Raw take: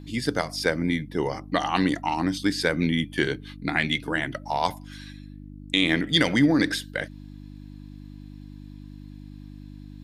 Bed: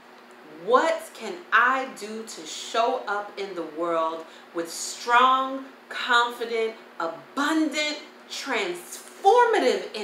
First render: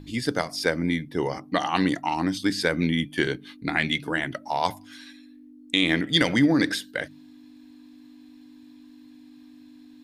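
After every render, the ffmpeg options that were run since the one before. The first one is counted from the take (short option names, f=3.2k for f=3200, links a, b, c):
-af "bandreject=f=50:t=h:w=4,bandreject=f=100:t=h:w=4,bandreject=f=150:t=h:w=4,bandreject=f=200:t=h:w=4"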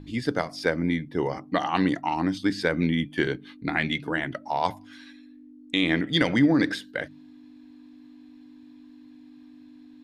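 -af "lowpass=f=2.6k:p=1"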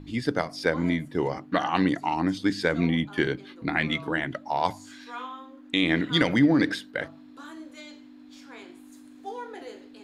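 -filter_complex "[1:a]volume=-20dB[a];[0:a][a]amix=inputs=2:normalize=0"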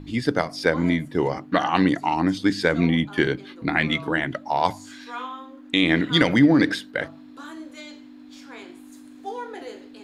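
-af "volume=4dB"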